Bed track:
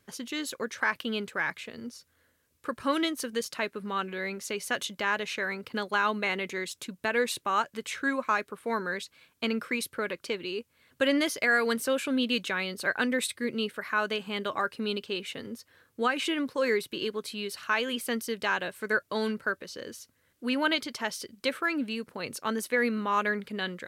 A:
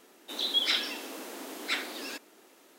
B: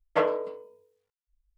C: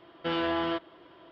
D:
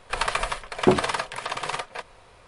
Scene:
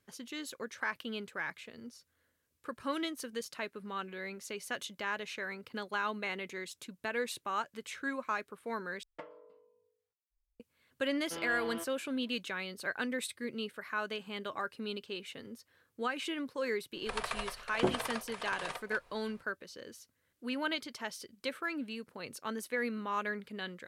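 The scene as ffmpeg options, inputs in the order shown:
-filter_complex "[0:a]volume=-8dB[a];[2:a]acompressor=threshold=-37dB:ratio=16:attack=42:release=905:knee=1:detection=peak[b];[a]asplit=2[c][d];[c]atrim=end=9.034[e];[b]atrim=end=1.57,asetpts=PTS-STARTPTS,volume=-12dB[f];[d]atrim=start=10.596[g];[3:a]atrim=end=1.31,asetpts=PTS-STARTPTS,volume=-13dB,afade=t=in:d=0.004:c=hsin,afade=t=out:st=1.306:d=0.004:c=hsin,adelay=487746S[h];[4:a]atrim=end=2.47,asetpts=PTS-STARTPTS,volume=-12dB,afade=t=in:d=0.004:c=hsin,afade=t=out:st=2.466:d=0.004:c=hsin,adelay=16960[i];[e][f]acrossfade=d=0.004:c1=hsin:c2=hsin[j];[j][g]acrossfade=d=0.004:c1=hsin:c2=hsin[k];[k][h][i]amix=inputs=3:normalize=0"

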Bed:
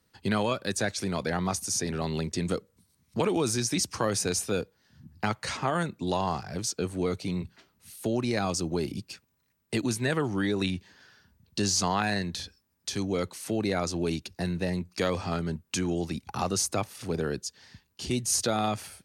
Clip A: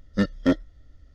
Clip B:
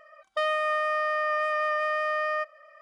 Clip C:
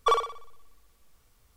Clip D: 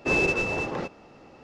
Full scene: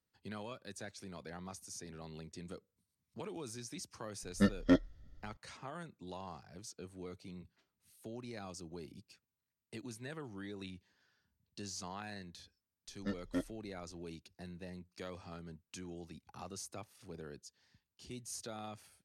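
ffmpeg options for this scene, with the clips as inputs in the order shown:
-filter_complex "[1:a]asplit=2[a][b];[0:a]volume=-18.5dB[c];[a]atrim=end=1.14,asetpts=PTS-STARTPTS,volume=-6.5dB,afade=t=in:d=0.004:c=hsin,afade=t=out:st=1.136:d=0.004:c=hsin,adelay=4230[d];[b]atrim=end=1.14,asetpts=PTS-STARTPTS,volume=-16.5dB,afade=t=in:d=0.004:c=hsin,afade=t=out:st=1.136:d=0.004:c=hsin,adelay=12880[e];[c][d][e]amix=inputs=3:normalize=0"

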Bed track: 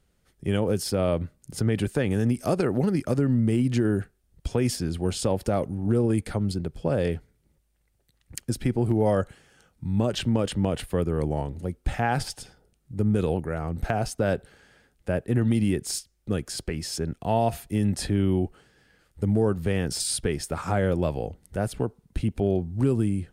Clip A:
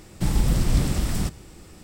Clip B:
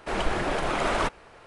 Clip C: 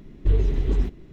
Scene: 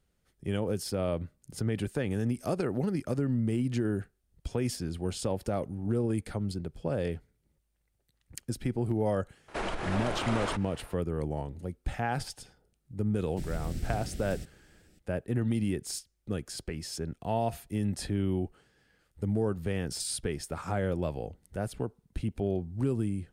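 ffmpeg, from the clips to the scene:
-filter_complex "[0:a]volume=-6.5dB[a];[2:a]acompressor=threshold=-27dB:ratio=12:attack=8.2:release=156:knee=1:detection=rms[b];[1:a]asuperstop=centerf=1000:order=4:qfactor=1.3[c];[b]atrim=end=1.46,asetpts=PTS-STARTPTS,volume=-1.5dB,afade=t=in:d=0.004:c=hsin,afade=t=out:st=1.456:d=0.004:c=hsin,adelay=9480[d];[c]atrim=end=1.83,asetpts=PTS-STARTPTS,volume=-15.5dB,afade=t=in:d=0.004:c=hsin,afade=t=out:st=1.826:d=0.004:c=hsin,adelay=580356S[e];[a][d][e]amix=inputs=3:normalize=0"

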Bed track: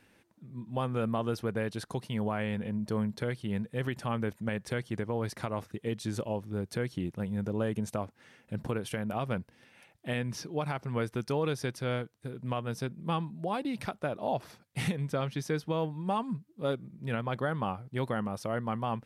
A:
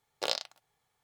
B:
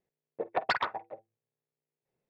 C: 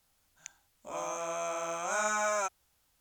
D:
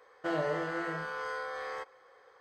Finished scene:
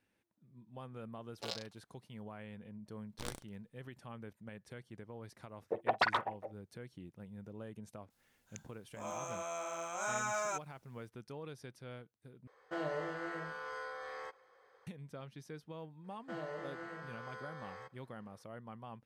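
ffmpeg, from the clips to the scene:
-filter_complex "[1:a]asplit=2[a][b];[4:a]asplit=2[c][d];[0:a]volume=-16.5dB[e];[a]asplit=2[f][g];[g]adelay=6,afreqshift=-2.1[h];[f][h]amix=inputs=2:normalize=1[i];[b]aeval=exprs='abs(val(0))':c=same[j];[e]asplit=2[k][l];[k]atrim=end=12.474[m];[c]atrim=end=2.4,asetpts=PTS-STARTPTS,volume=-6.5dB[n];[l]atrim=start=14.866[o];[i]atrim=end=1.03,asetpts=PTS-STARTPTS,volume=-8dB,afade=t=in:d=0.004:c=hsin,afade=t=out:st=1.026:d=0.004:c=hsin,adelay=1200[p];[j]atrim=end=1.03,asetpts=PTS-STARTPTS,volume=-11.5dB,afade=t=in:d=0.004:c=hsin,afade=t=out:st=1.026:d=0.004:c=hsin,adelay=2970[q];[2:a]atrim=end=2.29,asetpts=PTS-STARTPTS,volume=-1.5dB,afade=t=in:d=0.004:c=hsin,afade=t=out:st=2.286:d=0.004:c=hsin,adelay=5320[r];[3:a]atrim=end=3,asetpts=PTS-STARTPTS,volume=-6dB,afade=t=in:d=0.004:c=hsin,afade=t=out:st=2.996:d=0.004:c=hsin,adelay=357210S[s];[d]atrim=end=2.4,asetpts=PTS-STARTPTS,volume=-11.5dB,afade=t=in:d=0.004:c=hsin,afade=t=out:st=2.396:d=0.004:c=hsin,adelay=707364S[t];[m][n]acrossfade=d=0.004:c1=hsin:c2=hsin[u];[u][o]acrossfade=d=0.004:c1=hsin:c2=hsin[v];[v][p][q][r][s][t]amix=inputs=6:normalize=0"

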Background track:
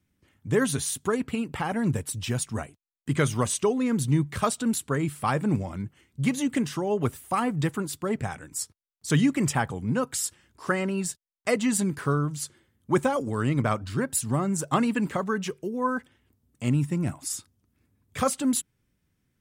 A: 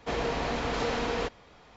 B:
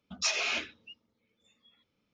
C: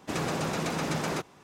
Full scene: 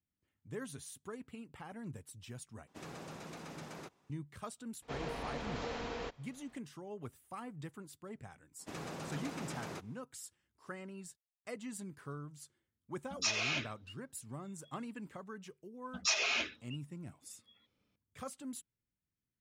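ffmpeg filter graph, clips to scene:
-filter_complex "[3:a]asplit=2[a][b];[2:a]asplit=2[c][d];[0:a]volume=-20dB,asplit=2[e][f];[e]atrim=end=2.674[g];[a]atrim=end=1.43,asetpts=PTS-STARTPTS,volume=-17.5dB[h];[f]atrim=start=4.096[i];[1:a]atrim=end=1.76,asetpts=PTS-STARTPTS,volume=-11dB,afade=t=in:d=0.004:c=hsin,afade=t=out:st=1.756:d=0.004:c=hsin,adelay=4820[j];[b]atrim=end=1.43,asetpts=PTS-STARTPTS,volume=-13.5dB,afade=t=in:d=0.004:c=hsin,afade=t=out:st=1.426:d=0.004:c=hsin,adelay=8590[k];[c]atrim=end=2.13,asetpts=PTS-STARTPTS,volume=-4dB,afade=t=in:d=0.004:c=hsin,afade=t=out:st=2.126:d=0.004:c=hsin,adelay=573300S[l];[d]atrim=end=2.13,asetpts=PTS-STARTPTS,volume=-2dB,afade=t=in:d=0.004:c=hsin,afade=t=out:st=2.126:d=0.004:c=hsin,adelay=15830[m];[g][h]acrossfade=d=0.004:c1=hsin:c2=hsin[n];[n][i]acrossfade=d=0.004:c1=hsin:c2=hsin[o];[o][j][k][l][m]amix=inputs=5:normalize=0"

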